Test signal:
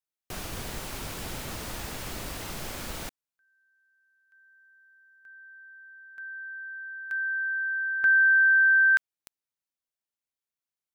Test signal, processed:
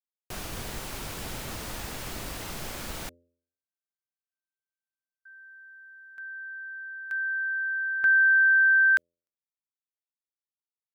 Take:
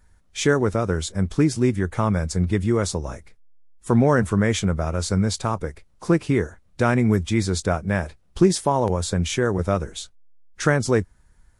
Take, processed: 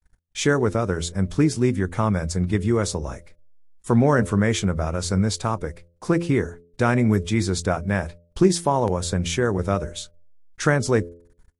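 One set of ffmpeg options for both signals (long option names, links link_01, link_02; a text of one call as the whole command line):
ffmpeg -i in.wav -af "agate=range=-43dB:threshold=-55dB:ratio=16:release=51:detection=peak,bandreject=frequency=85.63:width_type=h:width=4,bandreject=frequency=171.26:width_type=h:width=4,bandreject=frequency=256.89:width_type=h:width=4,bandreject=frequency=342.52:width_type=h:width=4,bandreject=frequency=428.15:width_type=h:width=4,bandreject=frequency=513.78:width_type=h:width=4,bandreject=frequency=599.41:width_type=h:width=4" out.wav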